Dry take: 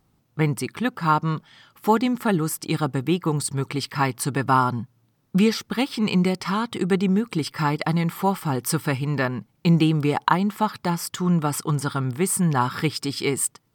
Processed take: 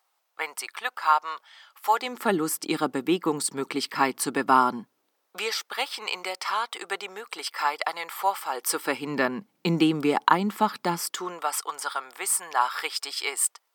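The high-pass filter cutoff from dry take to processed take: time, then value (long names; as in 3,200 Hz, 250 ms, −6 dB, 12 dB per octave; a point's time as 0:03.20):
high-pass filter 24 dB per octave
0:01.90 670 Hz
0:02.32 240 Hz
0:04.76 240 Hz
0:05.39 580 Hz
0:08.47 580 Hz
0:09.15 220 Hz
0:10.98 220 Hz
0:11.46 610 Hz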